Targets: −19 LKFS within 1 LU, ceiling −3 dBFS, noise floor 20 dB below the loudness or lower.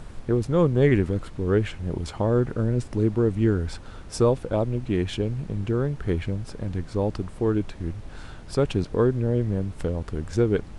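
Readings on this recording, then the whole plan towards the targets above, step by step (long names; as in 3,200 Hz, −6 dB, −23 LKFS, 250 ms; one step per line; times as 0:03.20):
background noise floor −41 dBFS; target noise floor −46 dBFS; integrated loudness −25.5 LKFS; sample peak −7.5 dBFS; target loudness −19.0 LKFS
→ noise reduction from a noise print 6 dB
level +6.5 dB
brickwall limiter −3 dBFS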